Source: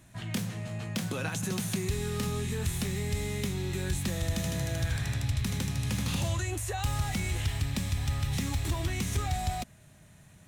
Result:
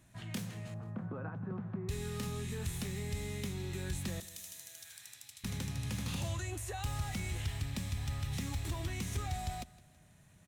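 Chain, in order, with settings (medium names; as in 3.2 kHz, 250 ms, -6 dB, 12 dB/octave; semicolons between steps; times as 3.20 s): 0.74–1.89 s: Chebyshev low-pass 1.3 kHz, order 3; 4.20–5.44 s: differentiator; feedback delay 163 ms, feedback 43%, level -20 dB; trim -7 dB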